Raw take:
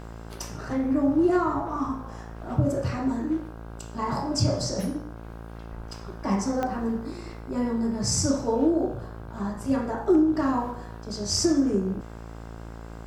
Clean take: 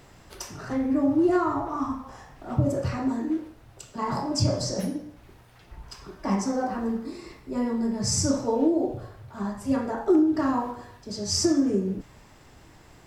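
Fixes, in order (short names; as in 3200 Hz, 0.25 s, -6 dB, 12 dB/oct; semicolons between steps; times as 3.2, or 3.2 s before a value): de-click; de-hum 56.2 Hz, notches 29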